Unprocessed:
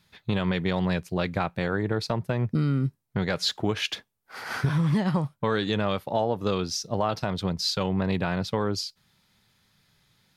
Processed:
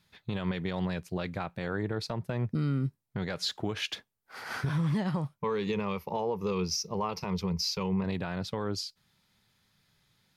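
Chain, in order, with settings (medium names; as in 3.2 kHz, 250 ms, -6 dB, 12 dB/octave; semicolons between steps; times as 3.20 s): 5.38–8.04 s: rippled EQ curve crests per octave 0.81, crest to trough 12 dB; peak limiter -17 dBFS, peak gain reduction 5.5 dB; trim -4.5 dB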